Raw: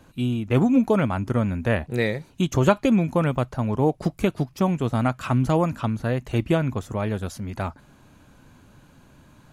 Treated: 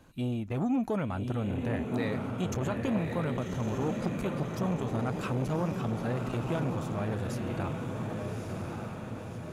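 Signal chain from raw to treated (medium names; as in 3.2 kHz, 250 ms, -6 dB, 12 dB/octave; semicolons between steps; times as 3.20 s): peak limiter -15.5 dBFS, peak gain reduction 11 dB; on a send: echo that smears into a reverb 1159 ms, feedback 54%, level -4 dB; on the sum: transformer saturation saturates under 480 Hz; trim -5.5 dB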